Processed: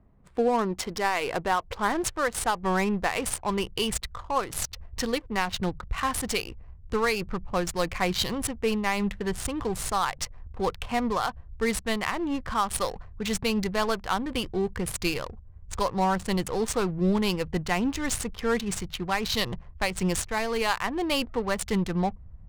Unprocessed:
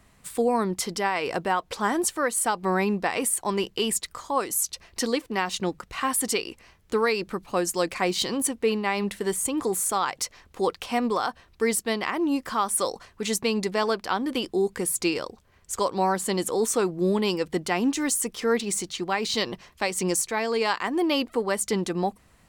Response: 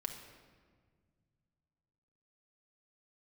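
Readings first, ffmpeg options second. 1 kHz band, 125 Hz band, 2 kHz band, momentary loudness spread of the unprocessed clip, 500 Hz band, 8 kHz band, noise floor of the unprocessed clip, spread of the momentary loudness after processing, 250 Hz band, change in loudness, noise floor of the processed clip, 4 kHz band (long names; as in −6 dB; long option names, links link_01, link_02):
−1.0 dB, +3.5 dB, −0.5 dB, 5 LU, −3.0 dB, −6.0 dB, −59 dBFS, 6 LU, −1.5 dB, −2.0 dB, −48 dBFS, −1.0 dB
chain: -af "adynamicsmooth=sensitivity=7:basefreq=610,asubboost=boost=10.5:cutoff=92"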